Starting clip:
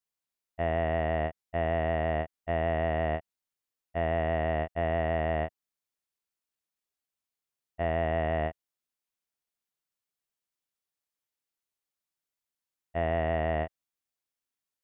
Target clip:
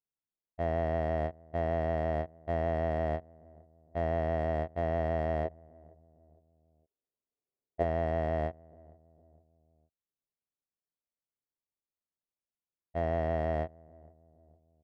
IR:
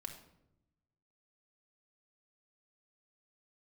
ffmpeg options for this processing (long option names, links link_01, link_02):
-filter_complex "[0:a]asplit=3[link_01][link_02][link_03];[link_01]afade=type=out:start_time=5.44:duration=0.02[link_04];[link_02]equalizer=frequency=440:width_type=o:width=1.3:gain=11,afade=type=in:start_time=5.44:duration=0.02,afade=type=out:start_time=7.82:duration=0.02[link_05];[link_03]afade=type=in:start_time=7.82:duration=0.02[link_06];[link_04][link_05][link_06]amix=inputs=3:normalize=0,asplit=2[link_07][link_08];[link_08]adelay=459,lowpass=frequency=850:poles=1,volume=-23dB,asplit=2[link_09][link_10];[link_10]adelay=459,lowpass=frequency=850:poles=1,volume=0.51,asplit=2[link_11][link_12];[link_12]adelay=459,lowpass=frequency=850:poles=1,volume=0.51[link_13];[link_07][link_09][link_11][link_13]amix=inputs=4:normalize=0,adynamicsmooth=sensitivity=6:basefreq=1000,highshelf=frequency=2100:gain=-11,volume=-1.5dB"